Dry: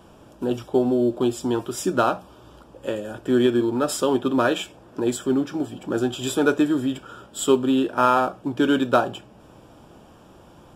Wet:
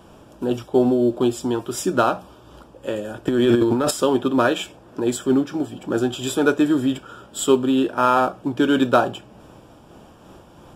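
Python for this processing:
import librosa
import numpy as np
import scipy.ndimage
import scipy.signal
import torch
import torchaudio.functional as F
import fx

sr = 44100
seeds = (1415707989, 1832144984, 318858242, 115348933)

y = fx.transient(x, sr, attack_db=-12, sustain_db=10, at=(3.27, 3.91))
y = fx.am_noise(y, sr, seeds[0], hz=5.7, depth_pct=55)
y = y * 10.0 ** (5.0 / 20.0)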